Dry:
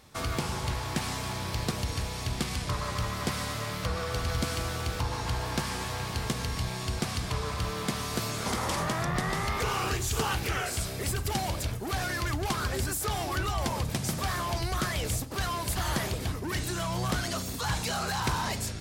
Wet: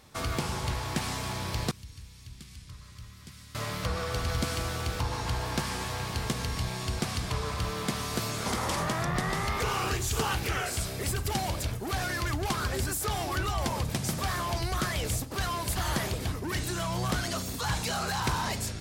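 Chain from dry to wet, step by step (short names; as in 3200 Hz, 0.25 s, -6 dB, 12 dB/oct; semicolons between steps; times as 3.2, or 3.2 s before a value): 1.71–3.55 passive tone stack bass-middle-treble 6-0-2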